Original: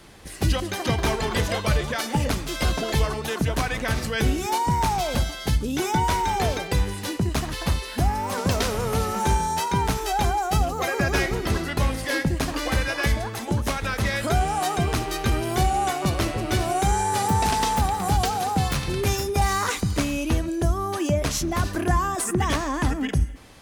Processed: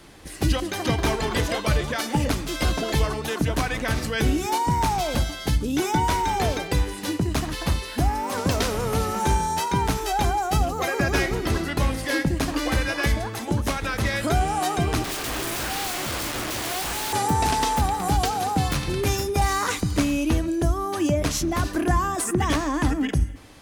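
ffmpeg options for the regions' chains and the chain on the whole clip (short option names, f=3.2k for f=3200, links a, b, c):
-filter_complex "[0:a]asettb=1/sr,asplit=3[a][b][c];[a]atrim=end=15.044[d];[b]atrim=start=15.04:end=17.13,asetpts=PTS-STARTPTS,afade=t=in:d=0.004:c=qsin,afade=t=out:st=2.086:d=0.004:c=qsin,acompressor=threshold=-21dB:ratio=10:attack=3.2:release=140:knee=1:detection=peak,acrusher=bits=2:mode=log:mix=0:aa=0.000001,aeval=exprs='(mod(17.8*val(0)+1,2)-1)/17.8':c=same[e];[c]atrim=start=17.126[f];[d][e]acrossfade=d=0.004:c1=hsin:c2=qsin[g];[g][f]acrossfade=d=0.004:c1=qsin:c2=hsin,equalizer=f=300:w=6.5:g=6,bandreject=f=98:t=h:w=4,bandreject=f=196:t=h:w=4"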